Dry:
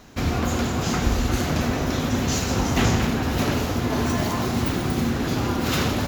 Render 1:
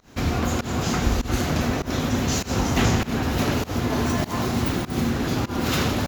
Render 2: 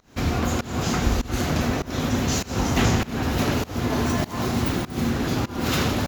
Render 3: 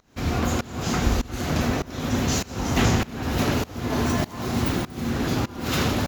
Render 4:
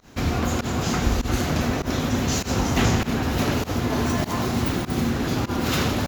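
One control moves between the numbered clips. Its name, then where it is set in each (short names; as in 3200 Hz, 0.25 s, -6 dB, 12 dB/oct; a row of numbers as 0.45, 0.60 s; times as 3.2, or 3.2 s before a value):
pump, release: 143, 244, 452, 93 ms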